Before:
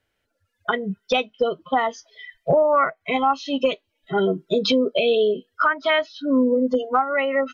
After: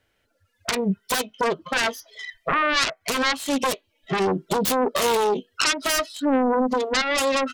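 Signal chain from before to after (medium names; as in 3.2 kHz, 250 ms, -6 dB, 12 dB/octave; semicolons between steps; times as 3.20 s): self-modulated delay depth 0.67 ms; peak limiter -18 dBFS, peak gain reduction 8.5 dB; trim +5 dB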